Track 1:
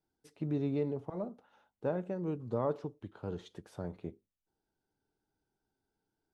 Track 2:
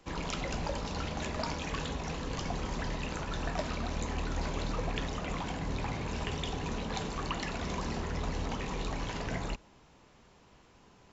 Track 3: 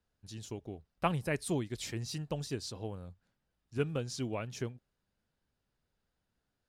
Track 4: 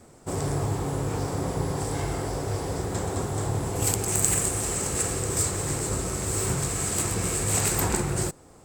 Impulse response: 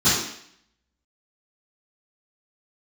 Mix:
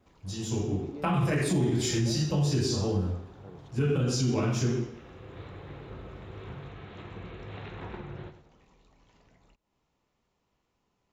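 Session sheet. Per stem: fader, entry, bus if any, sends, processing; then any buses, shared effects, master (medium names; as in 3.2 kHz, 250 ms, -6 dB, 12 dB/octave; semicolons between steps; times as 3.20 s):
-10.0 dB, 0.20 s, no send, no echo send, none
-17.0 dB, 0.00 s, no send, no echo send, band-stop 1.6 kHz; compression 10:1, threshold -42 dBFS, peak gain reduction 13.5 dB
+2.5 dB, 0.00 s, send -12.5 dB, no echo send, band-stop 4.2 kHz, Q 14
-14.0 dB, 0.00 s, no send, echo send -11 dB, steep low-pass 3.9 kHz 96 dB/octave; auto duck -11 dB, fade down 0.30 s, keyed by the third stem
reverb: on, RT60 0.65 s, pre-delay 3 ms
echo: feedback delay 99 ms, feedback 31%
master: peak limiter -18.5 dBFS, peak gain reduction 10 dB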